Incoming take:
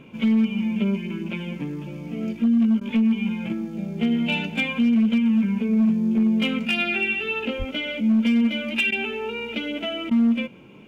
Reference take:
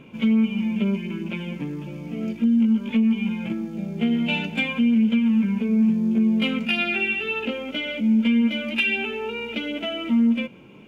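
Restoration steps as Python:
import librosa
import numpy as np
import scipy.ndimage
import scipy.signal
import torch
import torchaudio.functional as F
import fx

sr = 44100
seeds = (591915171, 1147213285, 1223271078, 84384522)

y = fx.fix_declip(x, sr, threshold_db=-14.5)
y = fx.fix_deplosive(y, sr, at_s=(7.58,))
y = fx.fix_interpolate(y, sr, at_s=(2.8, 8.91, 10.1), length_ms=10.0)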